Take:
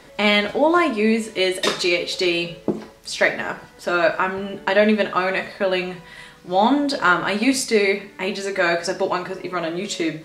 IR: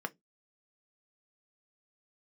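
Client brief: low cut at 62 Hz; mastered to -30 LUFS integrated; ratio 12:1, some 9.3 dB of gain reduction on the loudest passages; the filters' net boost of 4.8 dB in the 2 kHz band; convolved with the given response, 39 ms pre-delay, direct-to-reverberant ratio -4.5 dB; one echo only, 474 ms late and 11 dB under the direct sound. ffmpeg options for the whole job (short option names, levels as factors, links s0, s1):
-filter_complex "[0:a]highpass=62,equalizer=f=2000:t=o:g=6,acompressor=threshold=0.141:ratio=12,aecho=1:1:474:0.282,asplit=2[s0][s1];[1:a]atrim=start_sample=2205,adelay=39[s2];[s1][s2]afir=irnorm=-1:irlink=0,volume=1.19[s3];[s0][s3]amix=inputs=2:normalize=0,volume=0.237"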